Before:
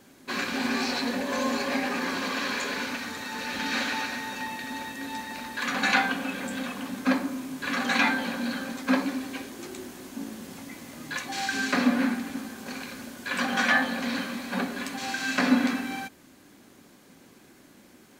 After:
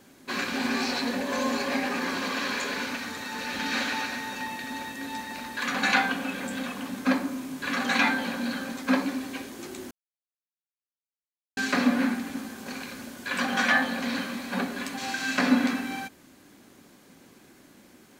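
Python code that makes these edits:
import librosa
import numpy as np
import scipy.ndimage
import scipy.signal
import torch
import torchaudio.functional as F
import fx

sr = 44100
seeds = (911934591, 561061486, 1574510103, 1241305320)

y = fx.edit(x, sr, fx.silence(start_s=9.91, length_s=1.66), tone=tone)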